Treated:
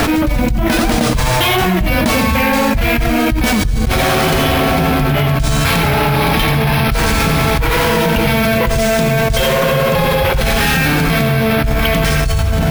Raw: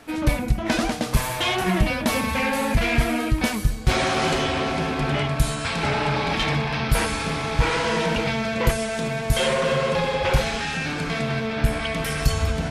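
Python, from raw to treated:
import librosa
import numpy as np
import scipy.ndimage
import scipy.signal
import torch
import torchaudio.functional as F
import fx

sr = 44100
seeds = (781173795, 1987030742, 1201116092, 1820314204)

p1 = fx.low_shelf(x, sr, hz=110.0, db=8.5)
p2 = p1 + fx.echo_single(p1, sr, ms=87, db=-10.5, dry=0)
p3 = np.repeat(p2[::3], 3)[:len(p2)]
p4 = fx.env_flatten(p3, sr, amount_pct=100)
y = F.gain(torch.from_numpy(p4), -5.5).numpy()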